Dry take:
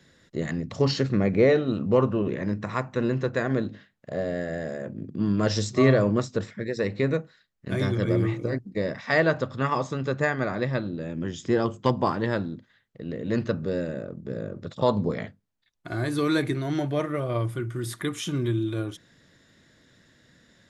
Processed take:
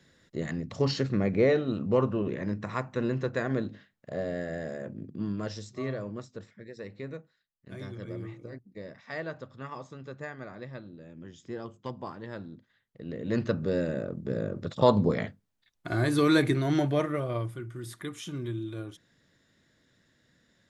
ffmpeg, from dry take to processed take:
ffmpeg -i in.wav -af "volume=12.5dB,afade=type=out:start_time=4.93:duration=0.67:silence=0.281838,afade=type=in:start_time=12.27:duration=0.78:silence=0.316228,afade=type=in:start_time=13.05:duration=1.05:silence=0.473151,afade=type=out:start_time=16.77:duration=0.8:silence=0.316228" out.wav

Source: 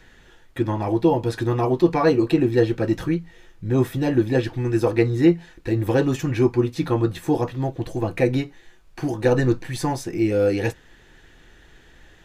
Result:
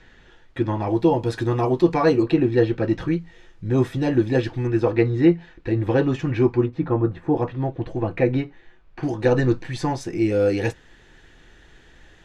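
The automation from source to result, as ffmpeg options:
ffmpeg -i in.wav -af "asetnsamples=nb_out_samples=441:pad=0,asendcmd='0.93 lowpass f 8900;2.23 lowpass f 4100;3.08 lowpass f 6800;4.67 lowpass f 3500;6.66 lowpass f 1400;7.37 lowpass f 2700;9.03 lowpass f 5600;10.01 lowpass f 8900',lowpass=5100" out.wav

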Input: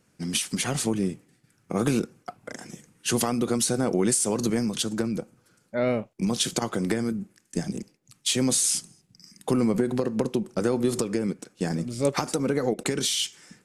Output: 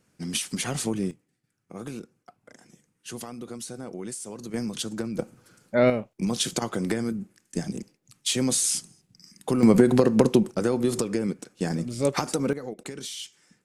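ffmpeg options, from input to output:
ffmpeg -i in.wav -af "asetnsamples=nb_out_samples=441:pad=0,asendcmd='1.11 volume volume -13dB;4.54 volume volume -4dB;5.19 volume volume 5.5dB;5.9 volume volume -1dB;9.63 volume volume 7dB;10.51 volume volume 0dB;12.53 volume volume -10.5dB',volume=-2dB" out.wav

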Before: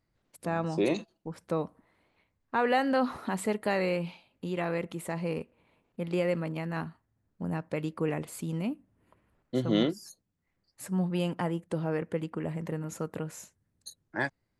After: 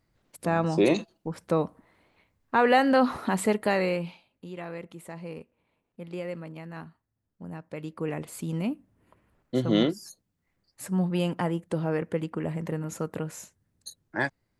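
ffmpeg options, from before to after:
ffmpeg -i in.wav -af "volume=15dB,afade=type=out:start_time=3.48:duration=0.97:silence=0.251189,afade=type=in:start_time=7.66:duration=0.97:silence=0.334965" out.wav

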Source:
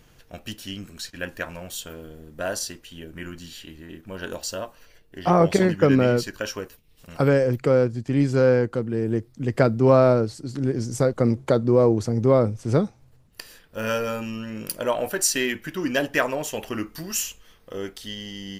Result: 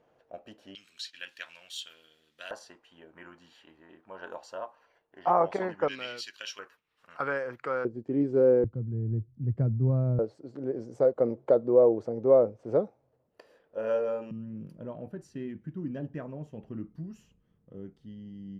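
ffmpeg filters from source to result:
ffmpeg -i in.wav -af "asetnsamples=nb_out_samples=441:pad=0,asendcmd='0.75 bandpass f 3400;2.51 bandpass f 880;5.88 bandpass f 3300;6.59 bandpass f 1300;7.85 bandpass f 400;8.64 bandpass f 110;10.19 bandpass f 550;14.31 bandpass f 150',bandpass=frequency=620:width_type=q:width=2.1:csg=0" out.wav

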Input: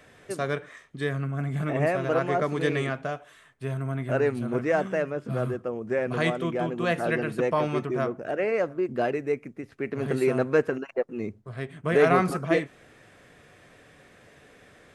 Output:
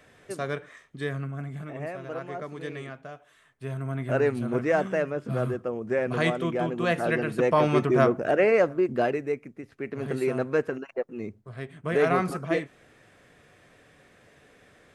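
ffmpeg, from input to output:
ffmpeg -i in.wav -af "volume=15.5dB,afade=type=out:start_time=1.17:duration=0.51:silence=0.398107,afade=type=in:start_time=3.1:duration=1.08:silence=0.281838,afade=type=in:start_time=7.31:duration=0.78:silence=0.446684,afade=type=out:start_time=8.09:duration=1.31:silence=0.298538" out.wav

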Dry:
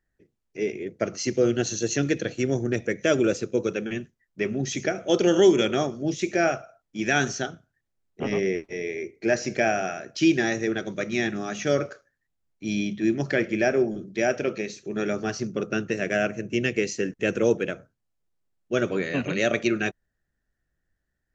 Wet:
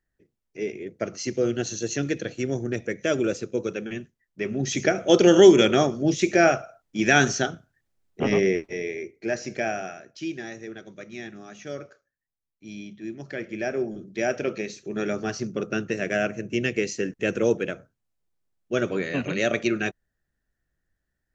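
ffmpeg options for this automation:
ffmpeg -i in.wav -af "volume=16dB,afade=type=in:start_time=4.43:duration=0.46:silence=0.446684,afade=type=out:start_time=8.33:duration=0.88:silence=0.354813,afade=type=out:start_time=9.74:duration=0.48:silence=0.421697,afade=type=in:start_time=13.21:duration=1.3:silence=0.266073" out.wav

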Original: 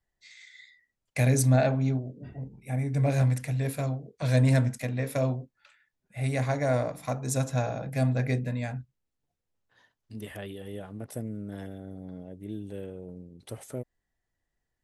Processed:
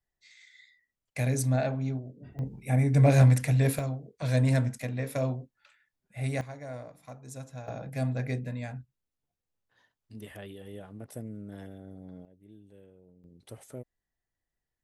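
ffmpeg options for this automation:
ffmpeg -i in.wav -af "asetnsamples=nb_out_samples=441:pad=0,asendcmd='2.39 volume volume 5dB;3.79 volume volume -2.5dB;6.41 volume volume -14.5dB;7.68 volume volume -4.5dB;12.25 volume volume -16dB;13.24 volume volume -6dB',volume=-5dB" out.wav

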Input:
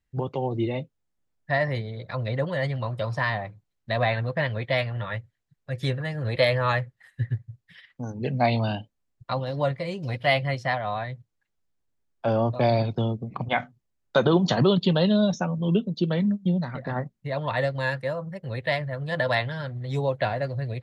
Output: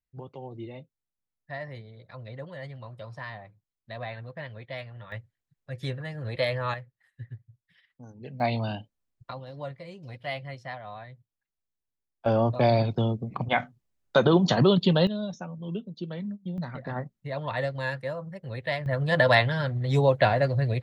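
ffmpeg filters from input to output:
ffmpeg -i in.wav -af "asetnsamples=nb_out_samples=441:pad=0,asendcmd='5.12 volume volume -6dB;6.74 volume volume -13.5dB;8.4 volume volume -4.5dB;9.31 volume volume -12dB;12.26 volume volume 0dB;15.07 volume volume -11dB;16.58 volume volume -4dB;18.86 volume volume 4.5dB',volume=-13dB" out.wav

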